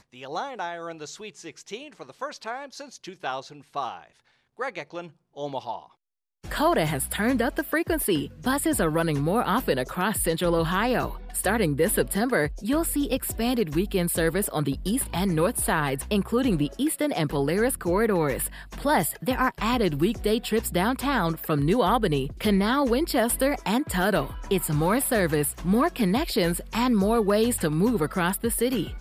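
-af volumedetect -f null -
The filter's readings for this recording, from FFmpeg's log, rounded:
mean_volume: -25.4 dB
max_volume: -9.4 dB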